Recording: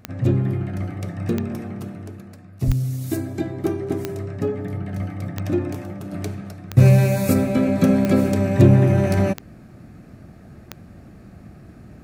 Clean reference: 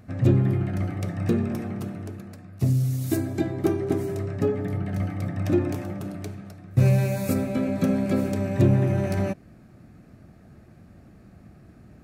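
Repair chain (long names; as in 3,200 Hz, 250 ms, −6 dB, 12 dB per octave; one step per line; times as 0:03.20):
click removal
0:02.66–0:02.78: high-pass filter 140 Hz 24 dB per octave
0:06.12: level correction −6.5 dB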